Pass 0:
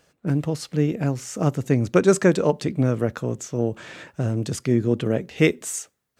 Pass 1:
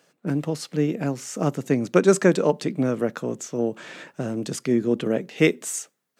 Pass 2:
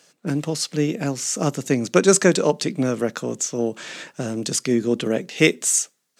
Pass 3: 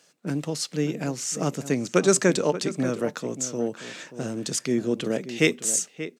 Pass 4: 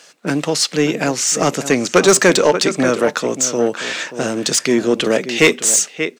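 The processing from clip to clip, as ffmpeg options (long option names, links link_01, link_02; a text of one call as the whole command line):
ffmpeg -i in.wav -af "highpass=frequency=160:width=0.5412,highpass=frequency=160:width=1.3066" out.wav
ffmpeg -i in.wav -af "equalizer=frequency=6300:width=0.49:gain=10.5,volume=1dB" out.wav
ffmpeg -i in.wav -filter_complex "[0:a]asplit=2[link_01][link_02];[link_02]adelay=583.1,volume=-12dB,highshelf=frequency=4000:gain=-13.1[link_03];[link_01][link_03]amix=inputs=2:normalize=0,volume=-4.5dB" out.wav
ffmpeg -i in.wav -filter_complex "[0:a]asplit=2[link_01][link_02];[link_02]highpass=frequency=720:poles=1,volume=18dB,asoftclip=type=tanh:threshold=-5.5dB[link_03];[link_01][link_03]amix=inputs=2:normalize=0,lowpass=frequency=5300:poles=1,volume=-6dB,volume=5dB" out.wav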